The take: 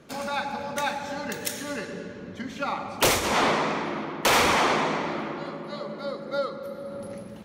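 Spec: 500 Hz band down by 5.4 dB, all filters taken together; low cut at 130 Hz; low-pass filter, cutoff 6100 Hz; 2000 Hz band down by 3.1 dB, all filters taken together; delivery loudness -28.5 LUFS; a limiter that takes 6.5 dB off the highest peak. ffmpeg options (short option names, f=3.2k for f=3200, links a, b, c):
-af "highpass=130,lowpass=6.1k,equalizer=f=500:t=o:g=-6.5,equalizer=f=2k:t=o:g=-3.5,volume=4dB,alimiter=limit=-17dB:level=0:latency=1"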